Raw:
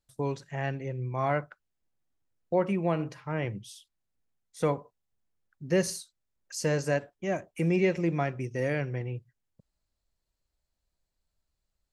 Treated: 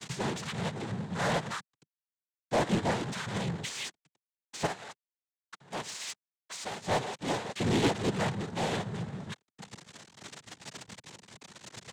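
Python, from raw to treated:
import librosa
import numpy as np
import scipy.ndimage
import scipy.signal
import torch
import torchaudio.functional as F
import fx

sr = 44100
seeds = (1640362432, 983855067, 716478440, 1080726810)

y = fx.delta_mod(x, sr, bps=32000, step_db=-26.0)
y = fx.noise_vocoder(y, sr, seeds[0], bands=6)
y = 10.0 ** (-26.5 / 20.0) * np.tanh(y / 10.0 ** (-26.5 / 20.0))
y = fx.low_shelf(y, sr, hz=420.0, db=-11.0, at=(4.66, 6.86))
y = fx.upward_expand(y, sr, threshold_db=-43.0, expansion=2.5)
y = F.gain(torch.from_numpy(y), 6.0).numpy()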